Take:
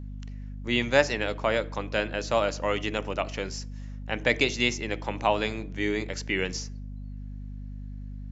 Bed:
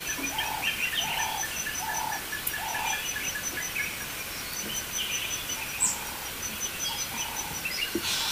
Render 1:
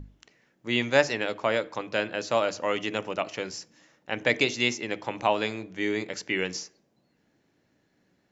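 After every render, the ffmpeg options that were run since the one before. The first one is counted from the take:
-af "bandreject=f=50:t=h:w=6,bandreject=f=100:t=h:w=6,bandreject=f=150:t=h:w=6,bandreject=f=200:t=h:w=6,bandreject=f=250:t=h:w=6"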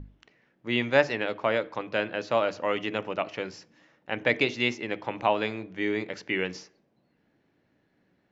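-af "lowpass=3400"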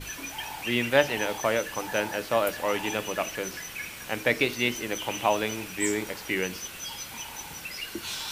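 -filter_complex "[1:a]volume=0.501[s0];[0:a][s0]amix=inputs=2:normalize=0"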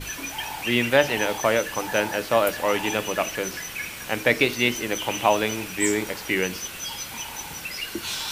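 -af "volume=1.68,alimiter=limit=0.708:level=0:latency=1"

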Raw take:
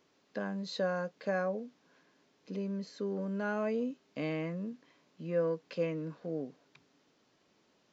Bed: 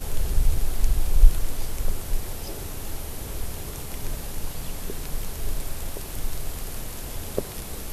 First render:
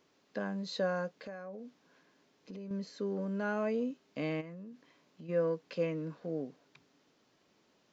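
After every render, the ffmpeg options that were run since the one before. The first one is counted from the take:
-filter_complex "[0:a]asettb=1/sr,asplit=3[s0][s1][s2];[s0]atrim=end=1.144[s3];[s1]atrim=start=1.14:end=2.71,asetpts=PTS-STARTPTS,afade=t=in:d=0.004:c=qsin,afade=t=out:st=1.566:d=0.004:c=qsin,acompressor=threshold=0.00794:ratio=5:attack=3.2:release=140:knee=1:detection=peak[s4];[s2]atrim=start=2.706[s5];[s3][s4]acrossfade=d=0.004:c1=hsin:c2=qsin[s6];[s6][s5]acrossfade=d=0.004:c1=qsin:c2=hsin,asplit=3[s7][s8][s9];[s7]afade=t=out:st=4.4:d=0.02[s10];[s8]acompressor=threshold=0.00501:ratio=4:attack=3.2:release=140:knee=1:detection=peak,afade=t=in:st=4.4:d=0.02,afade=t=out:st=5.28:d=0.02[s11];[s9]afade=t=in:st=5.28:d=0.02[s12];[s10][s11][s12]amix=inputs=3:normalize=0"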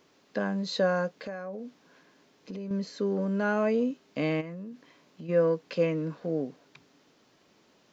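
-af "volume=2.24"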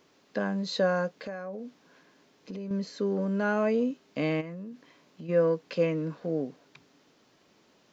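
-af anull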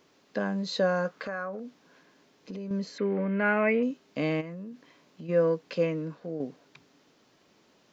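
-filter_complex "[0:a]asettb=1/sr,asplit=3[s0][s1][s2];[s0]atrim=end=1.054[s3];[s1]atrim=start=1.05:end=1.6,asetpts=PTS-STARTPTS,afade=t=in:d=0.004:c=qsin,afade=t=out:st=0.546:d=0.004:c=qsin,equalizer=f=1300:t=o:w=0.83:g=13[s4];[s2]atrim=start=1.596[s5];[s3][s4]acrossfade=d=0.004:c1=hsin:c2=qsin[s6];[s6][s5]acrossfade=d=0.004:c1=qsin:c2=hsin,asettb=1/sr,asplit=3[s7][s8][s9];[s7]atrim=end=2.984[s10];[s8]atrim=start=2.98:end=3.83,asetpts=PTS-STARTPTS,afade=t=in:d=0.004:c=qsin,afade=t=out:st=0.846:d=0.004:c=qsin,lowpass=f=2200:t=q:w=7.3[s11];[s9]atrim=start=3.826[s12];[s10][s11]acrossfade=d=0.004:c1=hsin:c2=qsin[s13];[s13][s12]acrossfade=d=0.004:c1=qsin:c2=hsin,asplit=2[s14][s15];[s14]atrim=end=6.4,asetpts=PTS-STARTPTS,afade=t=out:st=5.73:d=0.67:silence=0.473151[s16];[s15]atrim=start=6.4,asetpts=PTS-STARTPTS,afade=t=in:d=0.004:c=hsin:silence=0.473151[s17];[s16][s17]concat=n=2:v=0:a=1"

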